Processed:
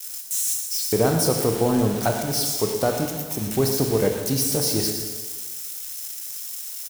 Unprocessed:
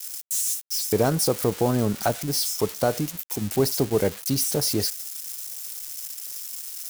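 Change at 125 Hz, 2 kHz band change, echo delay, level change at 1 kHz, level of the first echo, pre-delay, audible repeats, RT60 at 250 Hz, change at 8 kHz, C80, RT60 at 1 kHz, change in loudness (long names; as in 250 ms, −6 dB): +2.0 dB, +2.0 dB, 115 ms, +1.5 dB, −11.5 dB, 15 ms, 1, 1.3 s, +2.0 dB, 5.0 dB, 1.5 s, +2.0 dB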